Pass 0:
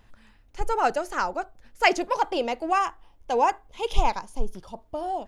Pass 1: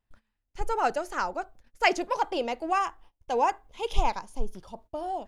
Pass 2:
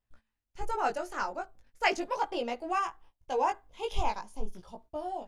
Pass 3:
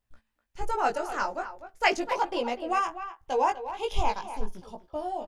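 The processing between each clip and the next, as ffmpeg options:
-af "agate=range=-22dB:threshold=-47dB:ratio=16:detection=peak,volume=-3dB"
-af "flanger=delay=16.5:depth=3.4:speed=0.4,volume=-1dB"
-filter_complex "[0:a]asplit=2[a][b];[b]adelay=250,highpass=300,lowpass=3.4k,asoftclip=type=hard:threshold=-21dB,volume=-11dB[c];[a][c]amix=inputs=2:normalize=0,volume=3.5dB"

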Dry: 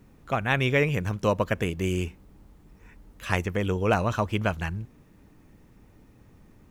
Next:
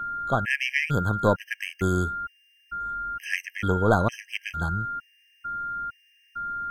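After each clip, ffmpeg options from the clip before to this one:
-af "aeval=exprs='val(0)+0.0282*sin(2*PI*1400*n/s)':c=same,aeval=exprs='0.398*(cos(1*acos(clip(val(0)/0.398,-1,1)))-cos(1*PI/2))+0.0398*(cos(4*acos(clip(val(0)/0.398,-1,1)))-cos(4*PI/2))':c=same,afftfilt=real='re*gt(sin(2*PI*1.1*pts/sr)*(1-2*mod(floor(b*sr/1024/1600),2)),0)':imag='im*gt(sin(2*PI*1.1*pts/sr)*(1-2*mod(floor(b*sr/1024/1600),2)),0)':win_size=1024:overlap=0.75,volume=2.5dB"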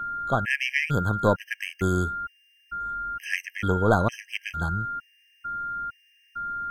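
-af anull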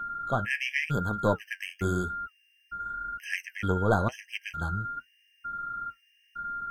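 -af "flanger=delay=4.2:depth=7.1:regen=-55:speed=0.92:shape=sinusoidal"

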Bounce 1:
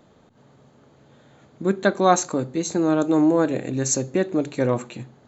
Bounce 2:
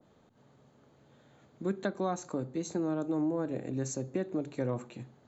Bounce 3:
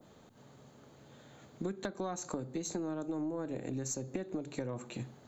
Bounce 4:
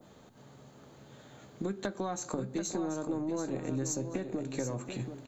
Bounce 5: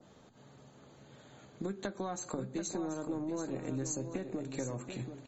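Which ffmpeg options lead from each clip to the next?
-filter_complex "[0:a]acrossover=split=190[a][b];[b]acompressor=threshold=-21dB:ratio=6[c];[a][c]amix=inputs=2:normalize=0,adynamicequalizer=threshold=0.00708:dfrequency=1500:dqfactor=0.7:tfrequency=1500:tqfactor=0.7:attack=5:release=100:ratio=0.375:range=3.5:mode=cutabove:tftype=highshelf,volume=-8.5dB"
-af "highshelf=f=4.3k:g=8,acompressor=threshold=-38dB:ratio=10,aeval=exprs='0.0422*(cos(1*acos(clip(val(0)/0.0422,-1,1)))-cos(1*PI/2))+0.00422*(cos(2*acos(clip(val(0)/0.0422,-1,1)))-cos(2*PI/2))':c=same,volume=4.5dB"
-filter_complex "[0:a]asplit=2[a][b];[b]adelay=15,volume=-12.5dB[c];[a][c]amix=inputs=2:normalize=0,aecho=1:1:734|1468|2202:0.376|0.0902|0.0216,volume=2.5dB"
-af "volume=-2.5dB" -ar 44100 -c:a libmp3lame -b:a 32k

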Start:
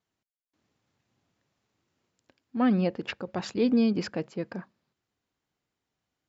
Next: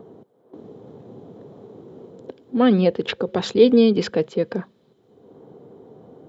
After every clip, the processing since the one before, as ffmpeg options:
-filter_complex "[0:a]superequalizer=7b=2.51:13b=2.51,acrossover=split=120|770|1300[a][b][c][d];[b]acompressor=mode=upward:threshold=-24dB:ratio=2.5[e];[a][e][c][d]amix=inputs=4:normalize=0,volume=6.5dB"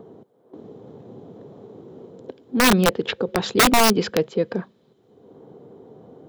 -af "aeval=exprs='(mod(2.82*val(0)+1,2)-1)/2.82':c=same"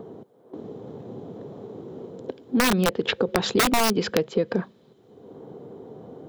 -af "acompressor=threshold=-21dB:ratio=12,volume=3.5dB"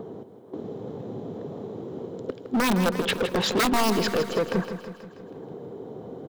-filter_complex "[0:a]volume=22.5dB,asoftclip=hard,volume=-22.5dB,asplit=2[a][b];[b]aecho=0:1:161|322|483|644|805|966|1127:0.316|0.187|0.11|0.0649|0.0383|0.0226|0.0133[c];[a][c]amix=inputs=2:normalize=0,volume=2.5dB"

